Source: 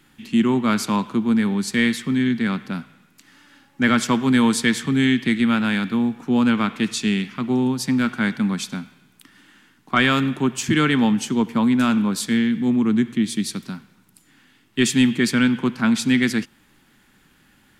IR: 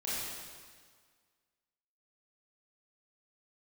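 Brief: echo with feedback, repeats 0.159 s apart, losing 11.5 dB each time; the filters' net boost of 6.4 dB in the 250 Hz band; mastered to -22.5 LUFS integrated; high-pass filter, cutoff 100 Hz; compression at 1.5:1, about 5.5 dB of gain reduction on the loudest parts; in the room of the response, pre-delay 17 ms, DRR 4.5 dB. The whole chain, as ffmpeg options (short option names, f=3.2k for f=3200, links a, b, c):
-filter_complex "[0:a]highpass=100,equalizer=f=250:t=o:g=7,acompressor=threshold=-23dB:ratio=1.5,aecho=1:1:159|318|477:0.266|0.0718|0.0194,asplit=2[a][b];[1:a]atrim=start_sample=2205,adelay=17[c];[b][c]afir=irnorm=-1:irlink=0,volume=-9.5dB[d];[a][d]amix=inputs=2:normalize=0,volume=-5dB"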